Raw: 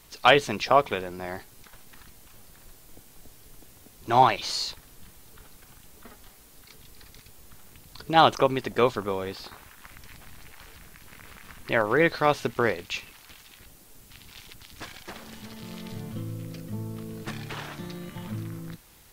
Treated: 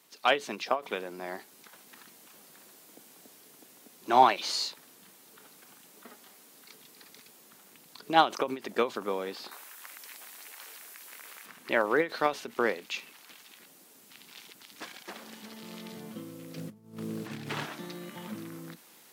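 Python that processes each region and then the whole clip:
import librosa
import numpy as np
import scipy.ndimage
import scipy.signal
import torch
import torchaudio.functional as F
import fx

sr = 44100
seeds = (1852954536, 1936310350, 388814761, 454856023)

y = fx.chain(x, sr, fx.highpass(hz=430.0, slope=12),
    fx.high_shelf(hz=5400.0, db=8.5), at=(9.51, 11.46))
y = fx.chain(y, sr, fx.peak_eq(hz=120.0, db=15.0, octaves=0.91),
    fx.over_compress(threshold_db=-29.0, ratio=-0.5),
    fx.doppler_dist(depth_ms=0.27), at=(16.56, 17.65))
y = scipy.signal.sosfilt(scipy.signal.butter(4, 200.0, 'highpass', fs=sr, output='sos'), y)
y = fx.rider(y, sr, range_db=4, speed_s=2.0)
y = fx.end_taper(y, sr, db_per_s=240.0)
y = y * librosa.db_to_amplitude(-4.5)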